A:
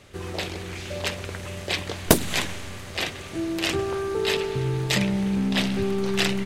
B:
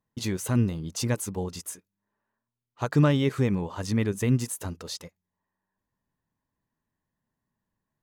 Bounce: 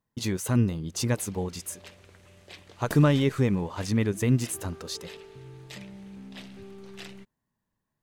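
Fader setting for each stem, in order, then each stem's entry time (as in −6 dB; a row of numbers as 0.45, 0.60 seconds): −20.0, +0.5 decibels; 0.80, 0.00 seconds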